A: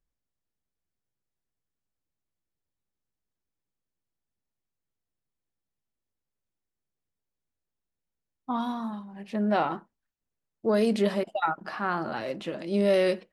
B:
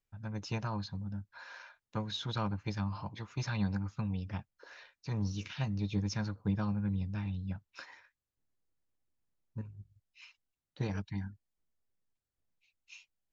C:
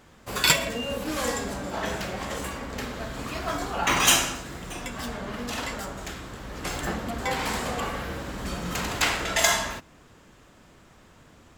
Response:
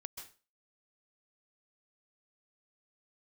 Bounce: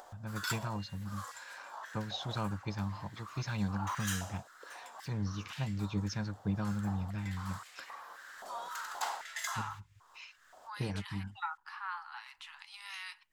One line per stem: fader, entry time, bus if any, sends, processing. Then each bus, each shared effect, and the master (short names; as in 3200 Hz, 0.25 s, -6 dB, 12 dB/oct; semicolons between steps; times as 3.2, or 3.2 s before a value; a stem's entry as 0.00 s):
-9.5 dB, 0.00 s, no send, steep high-pass 850 Hz 96 dB/oct
-1.5 dB, 0.00 s, no send, dry
-12.5 dB, 0.00 s, no send, bell 2400 Hz -12.5 dB 0.77 oct; stepped high-pass 3.8 Hz 710–2300 Hz; auto duck -6 dB, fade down 0.60 s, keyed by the second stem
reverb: off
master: upward compressor, threshold -43 dBFS